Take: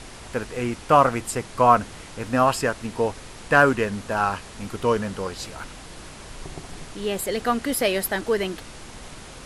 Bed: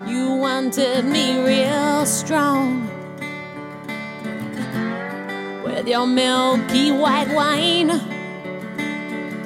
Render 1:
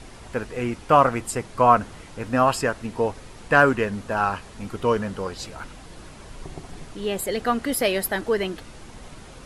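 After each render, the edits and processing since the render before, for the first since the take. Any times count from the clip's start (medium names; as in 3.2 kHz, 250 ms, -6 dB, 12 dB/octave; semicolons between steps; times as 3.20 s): noise reduction 6 dB, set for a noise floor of -42 dBFS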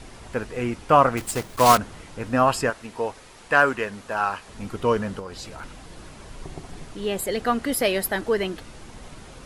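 1.17–1.78 s: block-companded coder 3-bit; 2.70–4.48 s: bass shelf 330 Hz -11.5 dB; 5.19–5.63 s: compression 3:1, threshold -33 dBFS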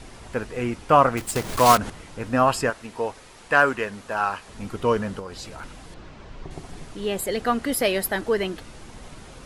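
1.36–1.90 s: upward compressor, threshold -17 dBFS; 5.94–6.51 s: distance through air 130 m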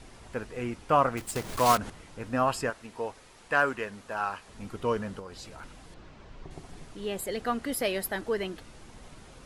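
trim -7 dB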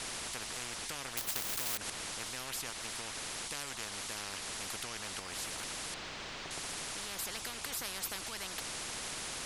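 compression 1.5:1, threshold -38 dBFS, peak gain reduction 8 dB; spectrum-flattening compressor 10:1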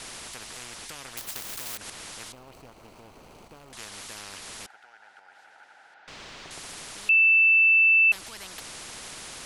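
2.32–3.73 s: median filter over 25 samples; 4.66–6.08 s: two resonant band-passes 1.1 kHz, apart 0.81 oct; 7.09–8.12 s: bleep 2.65 kHz -15 dBFS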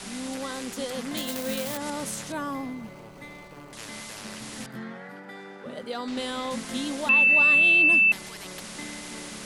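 add bed -14.5 dB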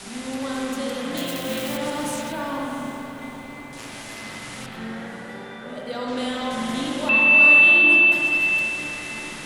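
echo that smears into a reverb 689 ms, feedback 46%, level -13.5 dB; spring tank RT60 3 s, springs 40/53 ms, chirp 60 ms, DRR -4 dB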